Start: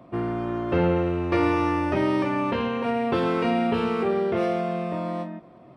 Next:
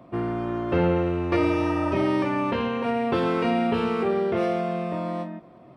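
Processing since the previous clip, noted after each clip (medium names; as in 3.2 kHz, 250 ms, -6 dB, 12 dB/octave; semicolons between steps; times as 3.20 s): spectral replace 1.39–2.04 s, 610–2100 Hz after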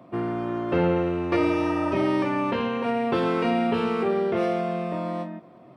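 high-pass 110 Hz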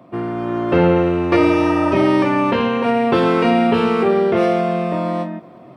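level rider gain up to 5 dB; trim +3.5 dB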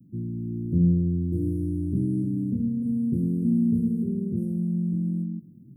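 inverse Chebyshev band-stop 790–3800 Hz, stop band 70 dB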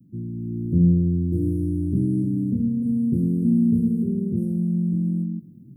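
level rider gain up to 3.5 dB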